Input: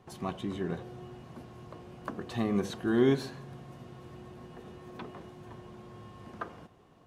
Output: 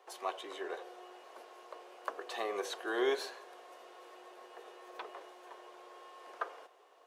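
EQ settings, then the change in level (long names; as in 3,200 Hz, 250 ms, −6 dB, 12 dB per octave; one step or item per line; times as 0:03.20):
Butterworth high-pass 430 Hz 36 dB per octave
+1.0 dB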